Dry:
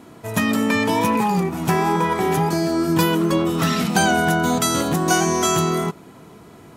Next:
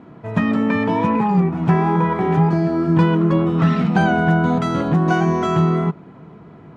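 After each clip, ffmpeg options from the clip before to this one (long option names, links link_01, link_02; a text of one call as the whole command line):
ffmpeg -i in.wav -af "lowpass=2000,equalizer=frequency=160:width=2.2:gain=7.5" out.wav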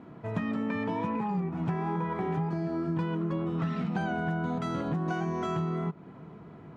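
ffmpeg -i in.wav -af "acompressor=threshold=-23dB:ratio=4,volume=-6dB" out.wav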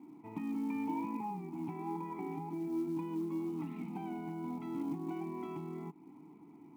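ffmpeg -i in.wav -filter_complex "[0:a]asplit=3[link_01][link_02][link_03];[link_01]bandpass=frequency=300:width_type=q:width=8,volume=0dB[link_04];[link_02]bandpass=frequency=870:width_type=q:width=8,volume=-6dB[link_05];[link_03]bandpass=frequency=2240:width_type=q:width=8,volume=-9dB[link_06];[link_04][link_05][link_06]amix=inputs=3:normalize=0,acrusher=bits=8:mode=log:mix=0:aa=0.000001,volume=3.5dB" out.wav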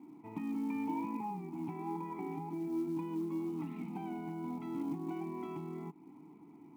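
ffmpeg -i in.wav -af anull out.wav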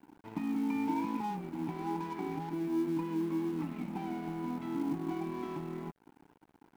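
ffmpeg -i in.wav -af "aeval=exprs='sgn(val(0))*max(abs(val(0))-0.00237,0)':channel_layout=same,volume=5dB" out.wav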